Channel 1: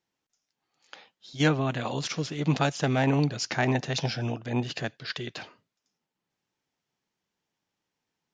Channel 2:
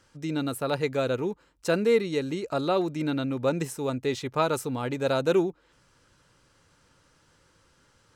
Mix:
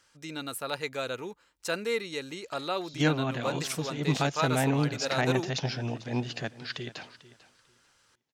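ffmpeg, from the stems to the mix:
-filter_complex "[0:a]adelay=1600,volume=-2.5dB,asplit=2[a][b];[b]volume=-17.5dB[c];[1:a]tiltshelf=f=720:g=-7,volume=-6dB[d];[c]aecho=0:1:445|890|1335:1|0.2|0.04[e];[a][d][e]amix=inputs=3:normalize=0"

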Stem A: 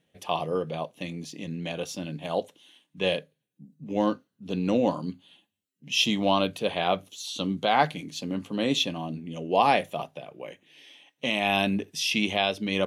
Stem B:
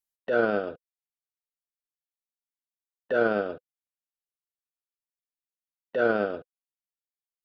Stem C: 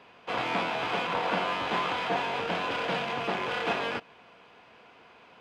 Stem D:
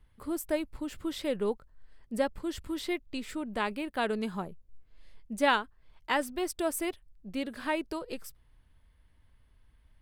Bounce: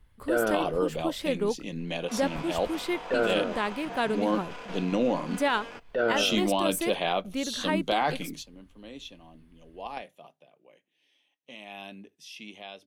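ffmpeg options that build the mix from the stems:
-filter_complex "[0:a]highpass=170,adelay=250,volume=1dB[a];[1:a]volume=-1dB[b];[2:a]highshelf=f=5k:t=q:w=1.5:g=6,adelay=1800,volume=-11dB[c];[3:a]volume=2.5dB,asplit=2[d][e];[e]apad=whole_len=578461[f];[a][f]sidechaingate=range=-19dB:threshold=-52dB:ratio=16:detection=peak[g];[g][b][c][d]amix=inputs=4:normalize=0,alimiter=limit=-15.5dB:level=0:latency=1:release=24"

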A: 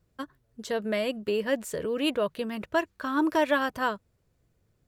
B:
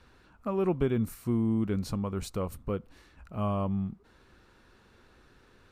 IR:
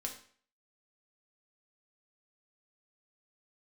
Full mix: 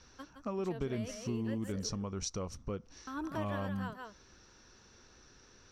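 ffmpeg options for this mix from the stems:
-filter_complex "[0:a]volume=-12.5dB,asplit=3[a][b][c];[a]atrim=end=1.89,asetpts=PTS-STARTPTS,afade=t=out:st=1.886:d=0.004:c=hsin[d];[b]atrim=start=1.89:end=3.07,asetpts=PTS-STARTPTS,volume=0[e];[c]atrim=start=3.07,asetpts=PTS-STARTPTS,afade=t=in:d=0.004:c=hsin[f];[d][e][f]concat=n=3:v=0:a=1,asplit=2[g][h];[h]volume=-7dB[i];[1:a]lowpass=f=5.8k:t=q:w=13,volume=-2.5dB[j];[i]aecho=0:1:166:1[k];[g][j][k]amix=inputs=3:normalize=0,acompressor=threshold=-37dB:ratio=2"

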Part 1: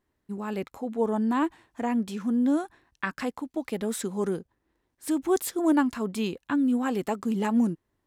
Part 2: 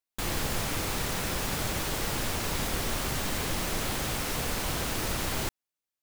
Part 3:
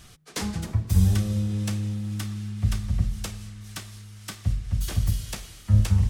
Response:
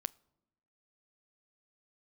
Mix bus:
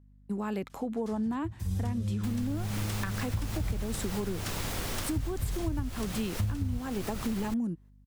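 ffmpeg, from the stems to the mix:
-filter_complex "[0:a]agate=range=-15dB:threshold=-49dB:ratio=16:detection=peak,volume=3dB[a];[1:a]adelay=2050,volume=-2dB[b];[2:a]adelay=700,afade=t=in:st=1.68:d=0.22:silence=0.237137[c];[a][b][c]amix=inputs=3:normalize=0,acrossover=split=190[d][e];[e]acompressor=threshold=-31dB:ratio=4[f];[d][f]amix=inputs=2:normalize=0,aeval=exprs='val(0)+0.00158*(sin(2*PI*50*n/s)+sin(2*PI*2*50*n/s)/2+sin(2*PI*3*50*n/s)/3+sin(2*PI*4*50*n/s)/4+sin(2*PI*5*50*n/s)/5)':c=same,acompressor=threshold=-28dB:ratio=6"

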